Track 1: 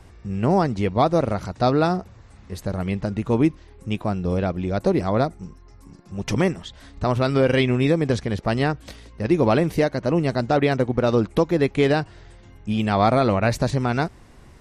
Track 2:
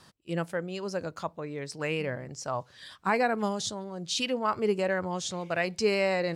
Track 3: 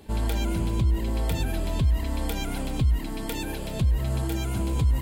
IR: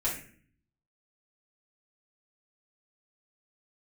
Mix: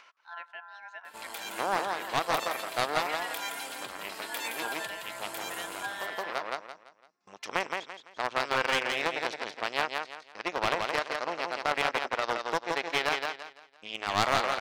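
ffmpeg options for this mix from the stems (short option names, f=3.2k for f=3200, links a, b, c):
-filter_complex "[0:a]agate=range=-23dB:threshold=-38dB:ratio=16:detection=peak,lowpass=f=6.2k:w=0.5412,lowpass=f=6.2k:w=1.3066,aeval=exprs='0.501*(cos(1*acos(clip(val(0)/0.501,-1,1)))-cos(1*PI/2))+0.126*(cos(3*acos(clip(val(0)/0.501,-1,1)))-cos(3*PI/2))+0.02*(cos(4*acos(clip(val(0)/0.501,-1,1)))-cos(4*PI/2))+0.0355*(cos(6*acos(clip(val(0)/0.501,-1,1)))-cos(6*PI/2))':c=same,adelay=1150,volume=2dB,asplit=2[a][b];[b]volume=-4.5dB[c];[1:a]lowpass=2.5k,aeval=exprs='val(0)*sin(2*PI*1200*n/s)':c=same,volume=-7.5dB,asplit=3[d][e][f];[e]volume=-19dB[g];[2:a]asoftclip=type=tanh:threshold=-22.5dB,adelay=1050,volume=0.5dB,asplit=2[h][i];[i]volume=-6dB[j];[f]apad=whole_len=694801[k];[a][k]sidechaincompress=threshold=-40dB:ratio=8:attack=5.1:release=269[l];[c][g][j]amix=inputs=3:normalize=0,aecho=0:1:169|338|507|676:1|0.3|0.09|0.027[m];[l][d][h][m]amix=inputs=4:normalize=0,highpass=890,acompressor=mode=upward:threshold=-45dB:ratio=2.5,aeval=exprs='clip(val(0),-1,0.0501)':c=same"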